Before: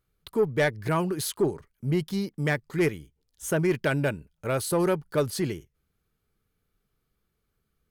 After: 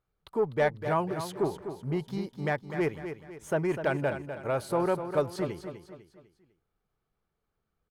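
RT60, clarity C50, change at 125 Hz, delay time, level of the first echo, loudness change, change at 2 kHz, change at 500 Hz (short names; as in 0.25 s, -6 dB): none, none, -6.0 dB, 0.25 s, -9.5 dB, -3.5 dB, -4.5 dB, -2.0 dB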